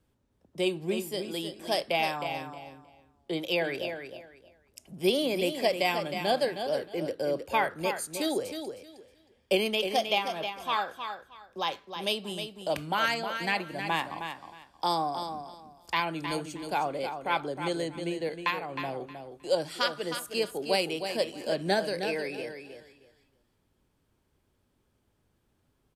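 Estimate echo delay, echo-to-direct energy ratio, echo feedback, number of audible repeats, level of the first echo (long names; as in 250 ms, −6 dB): 313 ms, −8.0 dB, 21%, 2, −8.0 dB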